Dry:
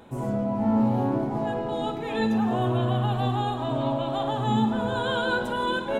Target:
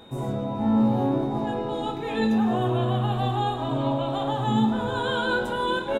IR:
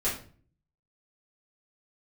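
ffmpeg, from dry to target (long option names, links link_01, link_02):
-filter_complex "[0:a]asplit=2[link_01][link_02];[link_02]adelay=22,volume=-7.5dB[link_03];[link_01][link_03]amix=inputs=2:normalize=0,aeval=exprs='val(0)+0.00251*sin(2*PI*3700*n/s)':channel_layout=same"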